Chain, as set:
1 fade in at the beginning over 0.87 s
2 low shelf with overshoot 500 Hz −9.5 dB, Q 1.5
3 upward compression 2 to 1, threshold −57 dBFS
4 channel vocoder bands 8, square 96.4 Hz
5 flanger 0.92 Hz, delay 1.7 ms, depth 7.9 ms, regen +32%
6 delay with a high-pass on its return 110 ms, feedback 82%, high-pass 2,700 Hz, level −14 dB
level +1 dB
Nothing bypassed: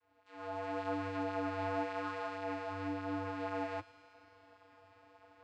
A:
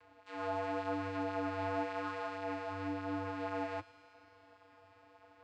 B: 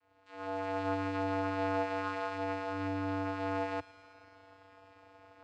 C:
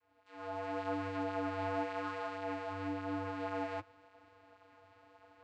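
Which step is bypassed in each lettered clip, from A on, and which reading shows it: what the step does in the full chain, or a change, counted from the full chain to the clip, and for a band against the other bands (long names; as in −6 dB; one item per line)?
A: 1, change in momentary loudness spread −3 LU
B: 5, change in integrated loudness +4.0 LU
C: 6, echo-to-direct ratio −17.0 dB to none audible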